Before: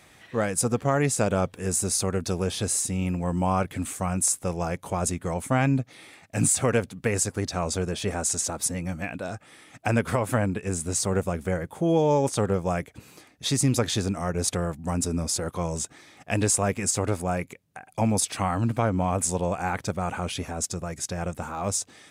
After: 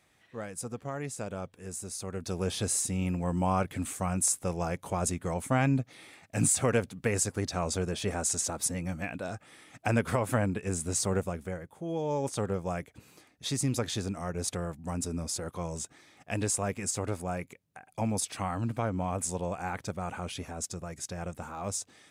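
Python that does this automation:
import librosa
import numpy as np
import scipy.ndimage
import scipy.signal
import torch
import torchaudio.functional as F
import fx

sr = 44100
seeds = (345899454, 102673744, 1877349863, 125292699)

y = fx.gain(x, sr, db=fx.line((1.97, -13.5), (2.48, -3.5), (11.12, -3.5), (11.78, -14.0), (12.31, -7.0)))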